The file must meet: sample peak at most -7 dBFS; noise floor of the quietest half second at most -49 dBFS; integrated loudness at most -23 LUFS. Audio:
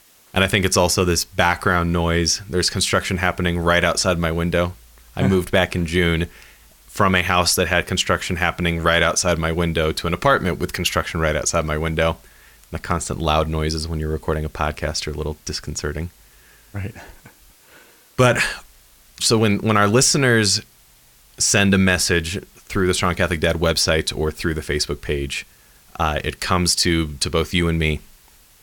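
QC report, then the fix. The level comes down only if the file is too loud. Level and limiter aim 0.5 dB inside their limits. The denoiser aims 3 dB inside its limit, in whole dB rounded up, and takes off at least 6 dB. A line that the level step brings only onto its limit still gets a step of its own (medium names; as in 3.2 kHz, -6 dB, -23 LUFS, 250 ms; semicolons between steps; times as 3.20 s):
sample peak -4.0 dBFS: fail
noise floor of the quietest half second -52 dBFS: pass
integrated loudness -19.5 LUFS: fail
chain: trim -4 dB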